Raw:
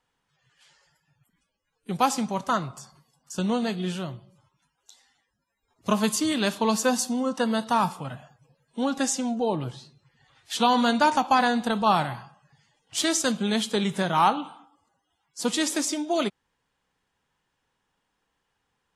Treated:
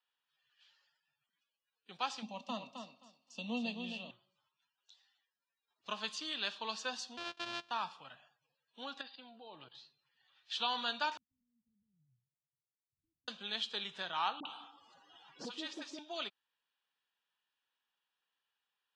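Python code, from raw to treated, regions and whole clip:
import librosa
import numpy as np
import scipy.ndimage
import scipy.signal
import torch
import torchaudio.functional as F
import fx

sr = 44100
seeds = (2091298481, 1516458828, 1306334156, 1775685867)

y = fx.chain(x, sr, fx.fixed_phaser(hz=400.0, stages=6),
    fx.small_body(hz=(240.0, 420.0, 2700.0), ring_ms=50, db=17),
    fx.echo_feedback(ms=263, feedback_pct=17, wet_db=-7), at=(2.22, 4.11))
y = fx.chain(y, sr, fx.sample_sort(block=128),
    fx.transient(attack_db=-3, sustain_db=-9), at=(7.17, 7.71))
y = fx.chain(y, sr, fx.level_steps(step_db=16),
    fx.brickwall_lowpass(high_hz=4900.0), at=(9.01, 9.75))
y = fx.chain(y, sr, fx.self_delay(depth_ms=0.19),
    fx.cheby2_lowpass(hz=670.0, order=4, stop_db=80), at=(11.17, 13.28))
y = fx.chain(y, sr, fx.tilt_shelf(db=7.5, hz=880.0),
    fx.dispersion(late='highs', ms=55.0, hz=810.0),
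    fx.band_squash(depth_pct=100), at=(14.4, 15.99))
y = scipy.signal.sosfilt(scipy.signal.butter(4, 3800.0, 'lowpass', fs=sr, output='sos'), y)
y = np.diff(y, prepend=0.0)
y = fx.notch(y, sr, hz=2100.0, q=6.7)
y = y * 10.0 ** (2.0 / 20.0)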